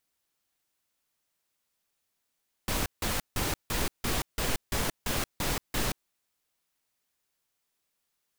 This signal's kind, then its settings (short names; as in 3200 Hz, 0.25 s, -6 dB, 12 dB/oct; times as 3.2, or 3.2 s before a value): noise bursts pink, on 0.18 s, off 0.16 s, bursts 10, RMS -29 dBFS